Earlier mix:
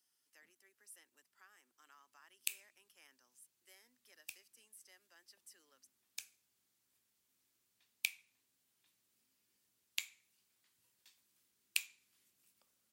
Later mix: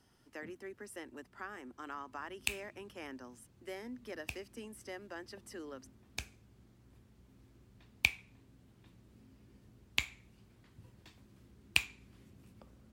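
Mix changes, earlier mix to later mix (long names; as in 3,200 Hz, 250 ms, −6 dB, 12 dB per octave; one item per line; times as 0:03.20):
speech +5.0 dB
master: remove first difference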